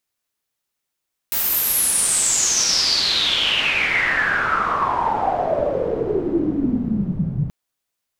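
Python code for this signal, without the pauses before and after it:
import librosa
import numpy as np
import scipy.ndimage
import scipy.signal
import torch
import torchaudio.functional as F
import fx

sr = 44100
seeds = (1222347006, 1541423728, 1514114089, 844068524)

y = fx.riser_noise(sr, seeds[0], length_s=6.18, colour='white', kind='lowpass', start_hz=16000.0, end_hz=140.0, q=8.6, swell_db=15, law='exponential')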